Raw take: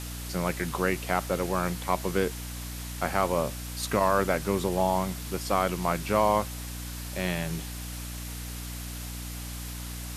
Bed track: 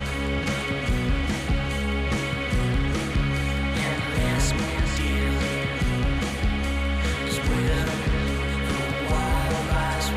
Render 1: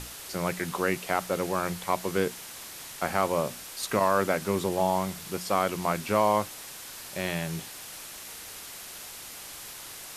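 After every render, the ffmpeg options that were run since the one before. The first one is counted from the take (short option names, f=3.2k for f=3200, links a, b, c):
-af "bandreject=f=60:t=h:w=6,bandreject=f=120:t=h:w=6,bandreject=f=180:t=h:w=6,bandreject=f=240:t=h:w=6,bandreject=f=300:t=h:w=6"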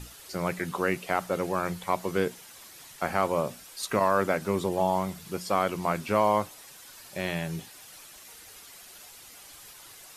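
-af "afftdn=nr=9:nf=-43"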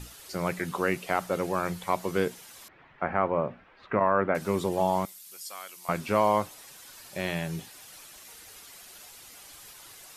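-filter_complex "[0:a]asettb=1/sr,asplit=3[a][b][c];[a]atrim=end=2.684[d];[b]atrim=start=2.68:end=4.35,asetpts=PTS-STARTPTS,afade=t=in:d=0.004:c=qsin,afade=t=out:st=1.666:d=0.004:c=qsin,lowpass=f=2.2k:w=0.5412,lowpass=f=2.2k:w=1.3066[e];[c]atrim=start=4.346[f];[d][e]acrossfade=d=0.004:c1=hsin:c2=qsin[g];[g][f]acrossfade=d=0.004:c1=qsin:c2=hsin,asettb=1/sr,asplit=3[h][i][j];[h]atrim=end=5.054[k];[i]atrim=start=5.05:end=5.89,asetpts=PTS-STARTPTS,afade=t=in:d=0.004:c=qsin,afade=t=out:st=0.836:d=0.004:c=qsin,aderivative[l];[j]atrim=start=5.886[m];[k][l]acrossfade=d=0.004:c1=hsin:c2=qsin[n];[n][m]acrossfade=d=0.004:c1=qsin:c2=hsin"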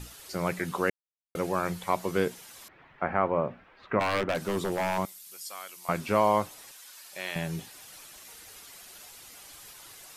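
-filter_complex "[0:a]asplit=3[a][b][c];[a]afade=t=out:st=3.99:d=0.02[d];[b]aeval=exprs='0.0891*(abs(mod(val(0)/0.0891+3,4)-2)-1)':c=same,afade=t=in:st=3.99:d=0.02,afade=t=out:st=4.97:d=0.02[e];[c]afade=t=in:st=4.97:d=0.02[f];[d][e][f]amix=inputs=3:normalize=0,asettb=1/sr,asplit=3[g][h][i];[g]atrim=end=6.714[j];[h]atrim=start=6.71:end=7.36,asetpts=PTS-STARTPTS,afade=t=in:d=0.004:c=qsin,afade=t=out:st=0.646:d=0.004:c=qsin,highpass=f=1.2k:p=1[k];[i]atrim=start=7.356[l];[j][k]acrossfade=d=0.004:c1=hsin:c2=qsin[m];[m][l]acrossfade=d=0.004:c1=qsin:c2=hsin,asplit=3[n][o][p];[n]atrim=end=0.9,asetpts=PTS-STARTPTS,afade=t=out:st=0.896:d=0.004:c=hsin[q];[o]atrim=start=0.9:end=1.35,asetpts=PTS-STARTPTS,volume=0[r];[p]atrim=start=1.35,asetpts=PTS-STARTPTS,afade=t=in:d=0.004:c=hsin[s];[q][r][s]concat=n=3:v=0:a=1"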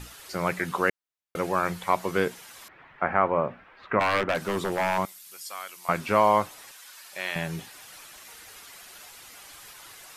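-af "equalizer=f=1.5k:w=0.56:g=5.5"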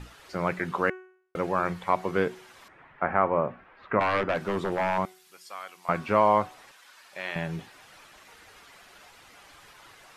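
-af "aemphasis=mode=reproduction:type=75kf,bandreject=f=371.4:t=h:w=4,bandreject=f=742.8:t=h:w=4,bandreject=f=1.1142k:t=h:w=4,bandreject=f=1.4856k:t=h:w=4,bandreject=f=1.857k:t=h:w=4,bandreject=f=2.2284k:t=h:w=4,bandreject=f=2.5998k:t=h:w=4,bandreject=f=2.9712k:t=h:w=4,bandreject=f=3.3426k:t=h:w=4,bandreject=f=3.714k:t=h:w=4,bandreject=f=4.0854k:t=h:w=4,bandreject=f=4.4568k:t=h:w=4,bandreject=f=4.8282k:t=h:w=4,bandreject=f=5.1996k:t=h:w=4,bandreject=f=5.571k:t=h:w=4,bandreject=f=5.9424k:t=h:w=4,bandreject=f=6.3138k:t=h:w=4,bandreject=f=6.6852k:t=h:w=4,bandreject=f=7.0566k:t=h:w=4,bandreject=f=7.428k:t=h:w=4,bandreject=f=7.7994k:t=h:w=4,bandreject=f=8.1708k:t=h:w=4,bandreject=f=8.5422k:t=h:w=4,bandreject=f=8.9136k:t=h:w=4,bandreject=f=9.285k:t=h:w=4,bandreject=f=9.6564k:t=h:w=4,bandreject=f=10.0278k:t=h:w=4,bandreject=f=10.3992k:t=h:w=4,bandreject=f=10.7706k:t=h:w=4,bandreject=f=11.142k:t=h:w=4"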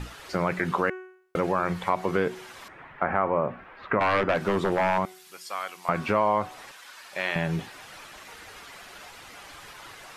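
-filter_complex "[0:a]asplit=2[a][b];[b]alimiter=limit=-18.5dB:level=0:latency=1:release=31,volume=2dB[c];[a][c]amix=inputs=2:normalize=0,acompressor=threshold=-23dB:ratio=2"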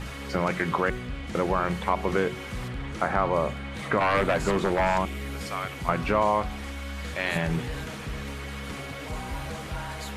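-filter_complex "[1:a]volume=-11dB[a];[0:a][a]amix=inputs=2:normalize=0"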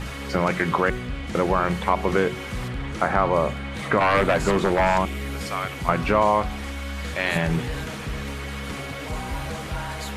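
-af "volume=4dB"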